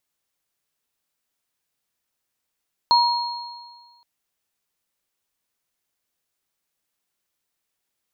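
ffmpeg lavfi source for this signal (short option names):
-f lavfi -i "aevalsrc='0.237*pow(10,-3*t/1.49)*sin(2*PI*955*t)+0.15*pow(10,-3*t/1.61)*sin(2*PI*4270*t)':d=1.12:s=44100"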